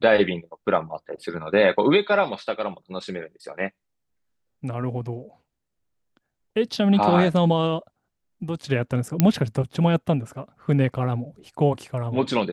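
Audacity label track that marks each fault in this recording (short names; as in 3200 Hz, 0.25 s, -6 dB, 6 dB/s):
9.200000	9.200000	pop -4 dBFS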